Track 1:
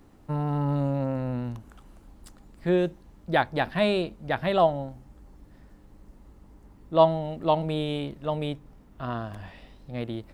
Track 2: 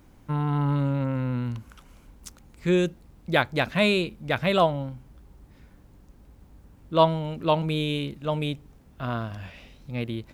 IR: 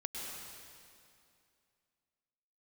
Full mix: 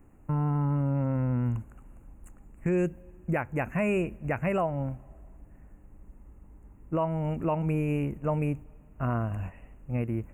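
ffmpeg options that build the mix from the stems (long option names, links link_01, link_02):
-filter_complex "[0:a]alimiter=limit=-13.5dB:level=0:latency=1:release=433,volume=-5.5dB,asplit=3[link_01][link_02][link_03];[link_02]volume=-24dB[link_04];[1:a]volume=-3dB[link_05];[link_03]apad=whole_len=455623[link_06];[link_05][link_06]sidechaingate=range=-33dB:threshold=-46dB:ratio=16:detection=peak[link_07];[2:a]atrim=start_sample=2205[link_08];[link_04][link_08]afir=irnorm=-1:irlink=0[link_09];[link_01][link_07][link_09]amix=inputs=3:normalize=0,asuperstop=centerf=4300:order=20:qfactor=1.2,lowshelf=frequency=120:gain=7.5,alimiter=limit=-19dB:level=0:latency=1:release=257"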